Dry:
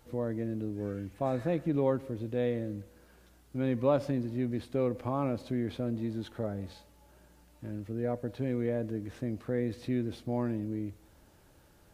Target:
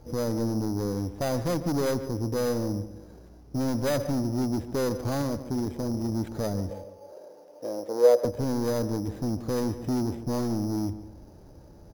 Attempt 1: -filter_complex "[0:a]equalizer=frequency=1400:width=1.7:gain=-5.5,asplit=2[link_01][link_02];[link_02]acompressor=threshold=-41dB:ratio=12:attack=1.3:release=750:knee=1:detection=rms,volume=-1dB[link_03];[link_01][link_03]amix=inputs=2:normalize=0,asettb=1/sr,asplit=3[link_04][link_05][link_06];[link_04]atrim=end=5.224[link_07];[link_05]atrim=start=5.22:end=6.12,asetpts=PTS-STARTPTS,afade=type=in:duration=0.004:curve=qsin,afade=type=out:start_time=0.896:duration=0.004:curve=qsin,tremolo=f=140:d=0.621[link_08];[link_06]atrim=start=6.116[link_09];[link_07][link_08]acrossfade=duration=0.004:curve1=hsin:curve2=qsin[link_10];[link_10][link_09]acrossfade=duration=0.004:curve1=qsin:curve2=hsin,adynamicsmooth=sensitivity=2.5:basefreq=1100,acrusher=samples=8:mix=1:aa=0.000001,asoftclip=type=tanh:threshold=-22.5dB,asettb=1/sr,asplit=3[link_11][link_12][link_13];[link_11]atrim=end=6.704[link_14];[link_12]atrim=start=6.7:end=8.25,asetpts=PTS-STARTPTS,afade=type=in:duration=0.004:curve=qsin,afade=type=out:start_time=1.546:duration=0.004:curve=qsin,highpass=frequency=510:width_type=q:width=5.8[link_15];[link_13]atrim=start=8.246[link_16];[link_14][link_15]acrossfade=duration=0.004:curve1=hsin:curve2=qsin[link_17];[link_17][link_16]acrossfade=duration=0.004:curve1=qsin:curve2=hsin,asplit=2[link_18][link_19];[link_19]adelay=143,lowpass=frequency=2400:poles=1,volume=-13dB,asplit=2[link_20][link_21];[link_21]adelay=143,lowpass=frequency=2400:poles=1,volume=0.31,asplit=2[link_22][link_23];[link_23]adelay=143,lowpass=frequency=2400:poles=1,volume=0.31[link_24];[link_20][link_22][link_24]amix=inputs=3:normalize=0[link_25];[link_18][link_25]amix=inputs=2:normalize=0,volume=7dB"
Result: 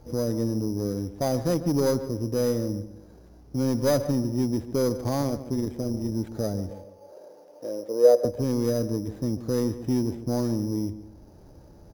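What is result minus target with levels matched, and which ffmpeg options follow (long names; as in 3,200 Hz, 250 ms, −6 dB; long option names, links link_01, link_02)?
downward compressor: peak gain reduction +10 dB; soft clipping: distortion −9 dB
-filter_complex "[0:a]equalizer=frequency=1400:width=1.7:gain=-5.5,asplit=2[link_01][link_02];[link_02]acompressor=threshold=-30dB:ratio=12:attack=1.3:release=750:knee=1:detection=rms,volume=-1dB[link_03];[link_01][link_03]amix=inputs=2:normalize=0,asettb=1/sr,asplit=3[link_04][link_05][link_06];[link_04]atrim=end=5.224[link_07];[link_05]atrim=start=5.22:end=6.12,asetpts=PTS-STARTPTS,afade=type=in:duration=0.004:curve=qsin,afade=type=out:start_time=0.896:duration=0.004:curve=qsin,tremolo=f=140:d=0.621[link_08];[link_06]atrim=start=6.116[link_09];[link_07][link_08]acrossfade=duration=0.004:curve1=hsin:curve2=qsin[link_10];[link_10][link_09]acrossfade=duration=0.004:curve1=qsin:curve2=hsin,adynamicsmooth=sensitivity=2.5:basefreq=1100,acrusher=samples=8:mix=1:aa=0.000001,asoftclip=type=tanh:threshold=-30dB,asettb=1/sr,asplit=3[link_11][link_12][link_13];[link_11]atrim=end=6.704[link_14];[link_12]atrim=start=6.7:end=8.25,asetpts=PTS-STARTPTS,afade=type=in:duration=0.004:curve=qsin,afade=type=out:start_time=1.546:duration=0.004:curve=qsin,highpass=frequency=510:width_type=q:width=5.8[link_15];[link_13]atrim=start=8.246[link_16];[link_14][link_15]acrossfade=duration=0.004:curve1=hsin:curve2=qsin[link_17];[link_17][link_16]acrossfade=duration=0.004:curve1=qsin:curve2=hsin,asplit=2[link_18][link_19];[link_19]adelay=143,lowpass=frequency=2400:poles=1,volume=-13dB,asplit=2[link_20][link_21];[link_21]adelay=143,lowpass=frequency=2400:poles=1,volume=0.31,asplit=2[link_22][link_23];[link_23]adelay=143,lowpass=frequency=2400:poles=1,volume=0.31[link_24];[link_20][link_22][link_24]amix=inputs=3:normalize=0[link_25];[link_18][link_25]amix=inputs=2:normalize=0,volume=7dB"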